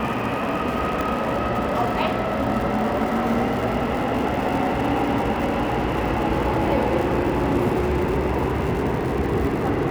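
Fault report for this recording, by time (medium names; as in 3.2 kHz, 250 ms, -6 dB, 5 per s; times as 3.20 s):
crackle 170 per s -29 dBFS
1.01 s: pop -12 dBFS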